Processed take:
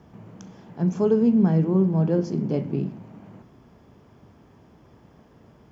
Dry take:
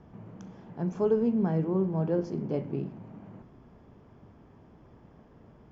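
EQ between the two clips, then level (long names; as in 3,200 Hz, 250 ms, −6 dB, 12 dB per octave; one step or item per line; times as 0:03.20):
high-shelf EQ 3,300 Hz +11 dB
dynamic equaliser 190 Hz, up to +7 dB, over −41 dBFS, Q 0.89
high-pass filter 53 Hz
+2.0 dB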